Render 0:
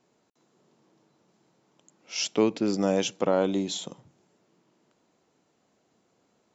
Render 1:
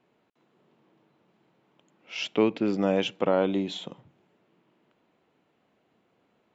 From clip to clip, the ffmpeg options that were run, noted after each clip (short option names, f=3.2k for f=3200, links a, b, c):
-af "highshelf=f=4.2k:t=q:w=1.5:g=-12.5"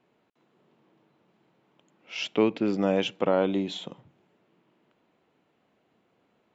-af anull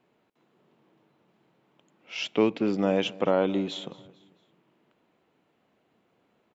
-af "aecho=1:1:223|446|669:0.0891|0.041|0.0189"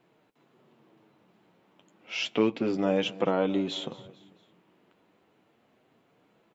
-filter_complex "[0:a]asplit=2[a][b];[b]acompressor=threshold=-33dB:ratio=6,volume=2dB[c];[a][c]amix=inputs=2:normalize=0,flanger=delay=5.9:depth=5.1:regen=-39:speed=0.31:shape=triangular"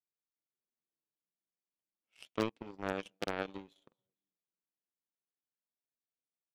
-af "aeval=exprs='0.282*(cos(1*acos(clip(val(0)/0.282,-1,1)))-cos(1*PI/2))+0.1*(cos(3*acos(clip(val(0)/0.282,-1,1)))-cos(3*PI/2))+0.00708*(cos(5*acos(clip(val(0)/0.282,-1,1)))-cos(5*PI/2))+0.00178*(cos(7*acos(clip(val(0)/0.282,-1,1)))-cos(7*PI/2))':c=same,agate=range=-7dB:threshold=-55dB:ratio=16:detection=peak,aeval=exprs='0.141*(abs(mod(val(0)/0.141+3,4)-2)-1)':c=same,volume=-1.5dB"